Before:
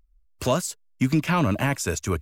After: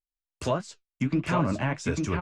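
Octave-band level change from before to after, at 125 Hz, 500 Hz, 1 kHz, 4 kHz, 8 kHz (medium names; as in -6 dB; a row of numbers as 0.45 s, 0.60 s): -4.0 dB, -3.5 dB, -3.5 dB, -7.0 dB, -11.5 dB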